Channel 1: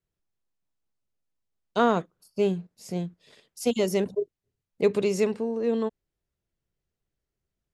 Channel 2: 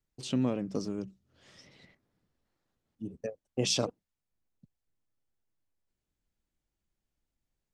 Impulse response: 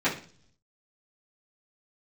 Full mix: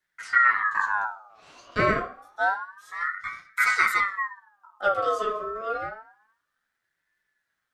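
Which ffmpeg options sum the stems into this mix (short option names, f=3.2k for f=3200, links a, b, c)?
-filter_complex "[0:a]volume=0dB,asplit=2[a][b];[b]volume=-14dB[c];[1:a]acrossover=split=470[d][e];[e]acompressor=threshold=-55dB:ratio=2[f];[d][f]amix=inputs=2:normalize=0,volume=2.5dB,asplit=3[g][h][i];[h]volume=-5.5dB[j];[i]apad=whole_len=341095[k];[a][k]sidechaingate=range=-13dB:threshold=-59dB:ratio=16:detection=peak[l];[2:a]atrim=start_sample=2205[m];[c][j]amix=inputs=2:normalize=0[n];[n][m]afir=irnorm=-1:irlink=0[o];[l][g][o]amix=inputs=3:normalize=0,aeval=exprs='val(0)*sin(2*PI*1300*n/s+1300*0.35/0.28*sin(2*PI*0.28*n/s))':c=same"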